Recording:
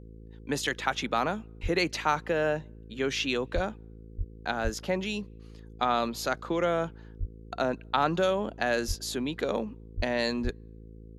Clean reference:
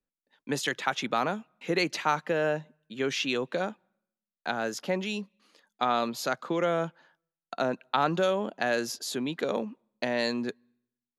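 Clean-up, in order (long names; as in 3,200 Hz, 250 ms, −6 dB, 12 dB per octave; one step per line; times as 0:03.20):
hum removal 54.9 Hz, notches 9
high-pass at the plosives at 0:01.62/0:03.54/0:04.17/0:04.63/0:07.19/0:08.87/0:09.96/0:10.43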